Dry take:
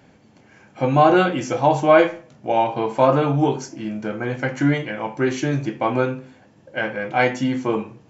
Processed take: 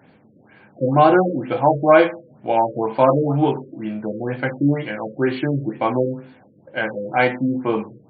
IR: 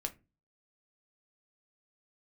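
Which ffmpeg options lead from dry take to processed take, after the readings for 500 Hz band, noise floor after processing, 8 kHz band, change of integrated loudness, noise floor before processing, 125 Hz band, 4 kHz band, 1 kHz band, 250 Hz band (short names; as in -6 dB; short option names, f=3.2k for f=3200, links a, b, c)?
+1.0 dB, -53 dBFS, n/a, +0.5 dB, -53 dBFS, 0.0 dB, -3.0 dB, +0.5 dB, +1.0 dB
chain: -af "highpass=100,afftfilt=real='re*lt(b*sr/1024,570*pow(4800/570,0.5+0.5*sin(2*PI*2.1*pts/sr)))':imag='im*lt(b*sr/1024,570*pow(4800/570,0.5+0.5*sin(2*PI*2.1*pts/sr)))':win_size=1024:overlap=0.75,volume=1dB"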